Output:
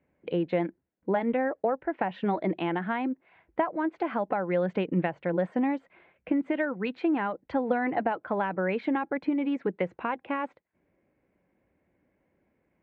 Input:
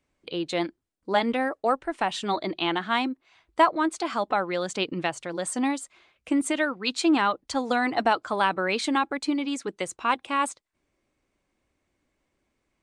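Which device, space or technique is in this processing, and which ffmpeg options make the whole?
bass amplifier: -af "acompressor=threshold=-29dB:ratio=4,highpass=68,equalizer=f=180:t=q:w=4:g=7,equalizer=f=510:t=q:w=4:g=4,equalizer=f=1.2k:t=q:w=4:g=-9,lowpass=f=2.1k:w=0.5412,lowpass=f=2.1k:w=1.3066,volume=4dB"

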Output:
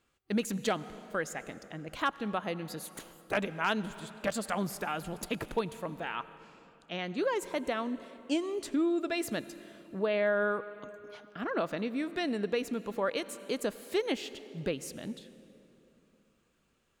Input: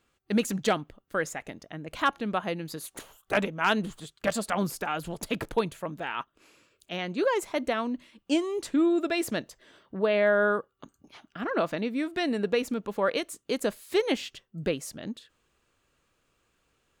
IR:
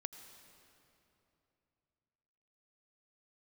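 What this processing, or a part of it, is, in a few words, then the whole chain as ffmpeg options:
compressed reverb return: -filter_complex "[0:a]asettb=1/sr,asplit=3[a][b][c];[a]atrim=end=6.174[d];[b]atrim=start=6.17:end=7.04,asetpts=PTS-STARTPTS,afade=t=in:d=0.004:c=qsin,afade=t=out:st=0.866:d=0.004:c=qsin,lowpass=5.9k[e];[c]atrim=start=7.036[f];[d][e]acrossfade=d=0.004:c1=hsin:c2=qsin[g];[g][f]acrossfade=d=0.004:c1=qsin:c2=hsin,asplit=2[h][i];[1:a]atrim=start_sample=2205[j];[i][j]afir=irnorm=-1:irlink=0,acompressor=threshold=-30dB:ratio=6,volume=1dB[k];[h][k]amix=inputs=2:normalize=0,volume=-8dB"

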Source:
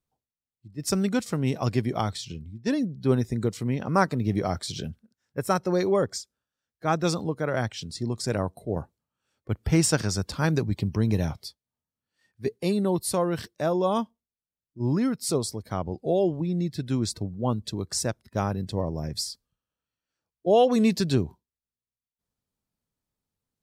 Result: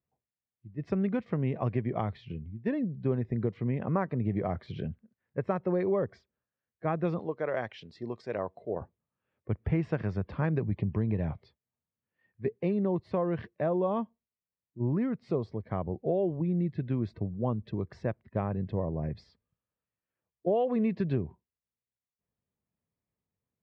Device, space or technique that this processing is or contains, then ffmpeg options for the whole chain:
bass amplifier: -filter_complex "[0:a]asettb=1/sr,asplit=3[a][b][c];[a]atrim=end=7.194[d];[b]atrim=start=7.19:end=8.81,asetpts=PTS-STARTPTS,afade=t=in:d=0.004:c=qsin,afade=t=out:st=1.616:d=0.004:c=qsin,bass=f=250:g=-14,treble=f=4k:g=14[e];[c]atrim=start=8.806[f];[d][e]acrossfade=d=0.004:c1=hsin:c2=qsin[g];[g][f]acrossfade=d=0.004:c1=qsin:c2=hsin,acompressor=threshold=-24dB:ratio=4,highpass=66,equalizer=f=280:t=q:w=4:g=-4,equalizer=f=850:t=q:w=4:g=-4,equalizer=f=1.4k:t=q:w=4:g=-8,lowpass=f=2.2k:w=0.5412,lowpass=f=2.2k:w=1.3066"

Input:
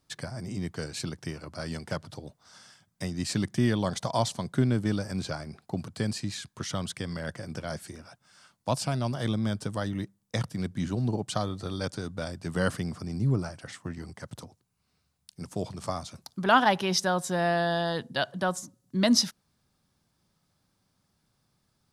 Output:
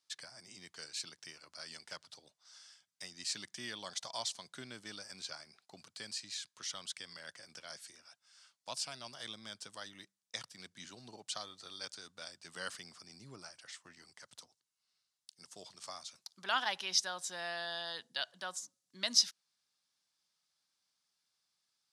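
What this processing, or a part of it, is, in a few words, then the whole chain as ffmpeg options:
piezo pickup straight into a mixer: -filter_complex "[0:a]asettb=1/sr,asplit=3[a][b][c];[a]atrim=end=14.414[d];[b]atrim=start=14.41:end=15.76,asetpts=PTS-STARTPTS,afade=t=in:d=0.004:c=qsin,afade=t=out:st=1.346:d=0.004:c=qsin,bandreject=f=2.4k:w=10[e];[c]atrim=start=15.756[f];[d][e]acrossfade=d=0.004:c1=hsin:c2=qsin[g];[g][f]acrossfade=d=0.004:c1=qsin:c2=hsin,lowpass=5.4k,aderivative,volume=3dB"

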